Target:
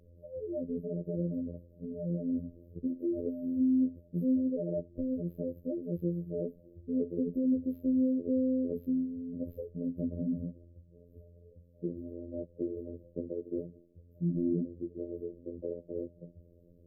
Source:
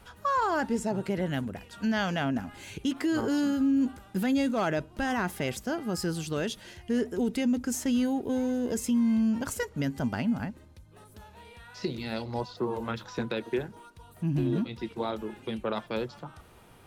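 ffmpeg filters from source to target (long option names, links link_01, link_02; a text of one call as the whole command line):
ffmpeg -i in.wav -af "afftfilt=real='hypot(re,im)*cos(PI*b)':imag='0':win_size=2048:overlap=0.75,afftfilt=real='re*(1-between(b*sr/4096,630,12000))':imag='im*(1-between(b*sr/4096,630,12000))':win_size=4096:overlap=0.75,adynamicsmooth=sensitivity=4:basefreq=7100" out.wav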